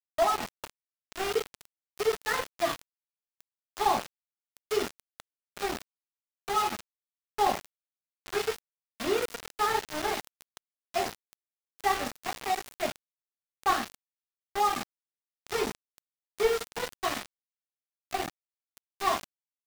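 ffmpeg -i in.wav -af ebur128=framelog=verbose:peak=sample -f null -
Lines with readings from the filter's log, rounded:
Integrated loudness:
  I:         -31.3 LUFS
  Threshold: -42.6 LUFS
Loudness range:
  LRA:         2.6 LU
  Threshold: -53.2 LUFS
  LRA low:   -34.5 LUFS
  LRA high:  -31.9 LUFS
Sample peak:
  Peak:      -13.0 dBFS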